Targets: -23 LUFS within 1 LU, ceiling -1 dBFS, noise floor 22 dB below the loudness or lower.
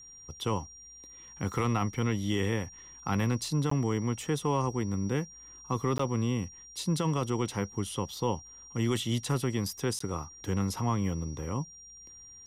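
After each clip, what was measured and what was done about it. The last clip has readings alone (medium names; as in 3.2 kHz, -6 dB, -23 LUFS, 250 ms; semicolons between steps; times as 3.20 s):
dropouts 3; longest dropout 14 ms; steady tone 5.7 kHz; tone level -48 dBFS; loudness -31.5 LUFS; peak level -18.0 dBFS; loudness target -23.0 LUFS
-> interpolate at 3.70/5.98/9.99 s, 14 ms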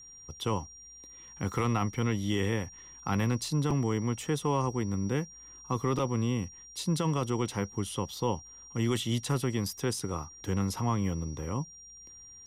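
dropouts 0; steady tone 5.7 kHz; tone level -48 dBFS
-> band-stop 5.7 kHz, Q 30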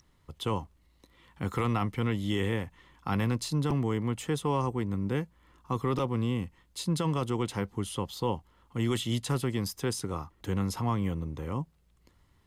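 steady tone not found; loudness -31.5 LUFS; peak level -18.0 dBFS; loudness target -23.0 LUFS
-> trim +8.5 dB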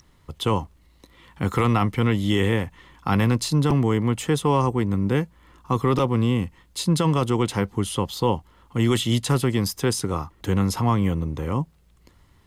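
loudness -23.0 LUFS; peak level -9.5 dBFS; noise floor -57 dBFS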